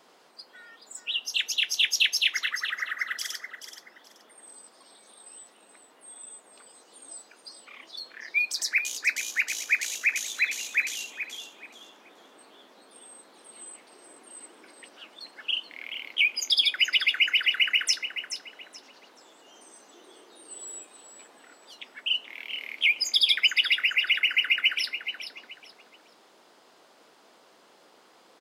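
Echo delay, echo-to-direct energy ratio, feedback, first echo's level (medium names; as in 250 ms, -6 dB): 428 ms, -9.5 dB, 25%, -10.0 dB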